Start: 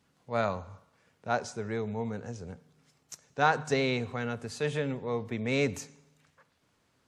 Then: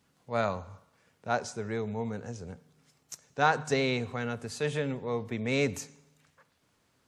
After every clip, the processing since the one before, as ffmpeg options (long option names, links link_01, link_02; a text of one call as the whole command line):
ffmpeg -i in.wav -af "highshelf=frequency=8200:gain=5" out.wav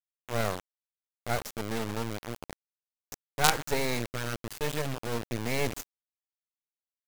ffmpeg -i in.wav -af "acrusher=bits=3:dc=4:mix=0:aa=0.000001,volume=2.5dB" out.wav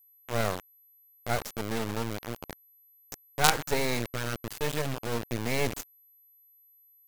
ffmpeg -i in.wav -af "aeval=exprs='val(0)+0.00112*sin(2*PI*12000*n/s)':channel_layout=same,volume=1dB" out.wav